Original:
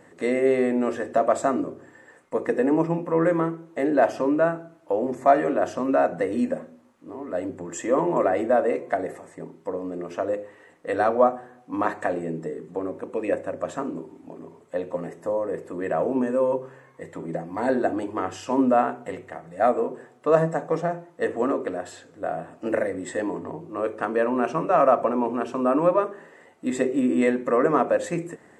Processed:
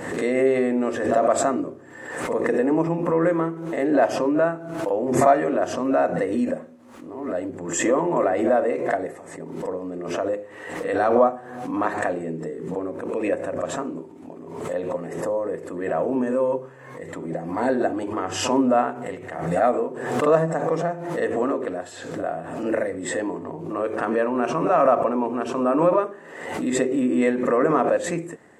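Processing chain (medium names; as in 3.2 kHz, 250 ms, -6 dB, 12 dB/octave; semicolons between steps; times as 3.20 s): pre-echo 45 ms -17 dB; swell ahead of each attack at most 52 dB/s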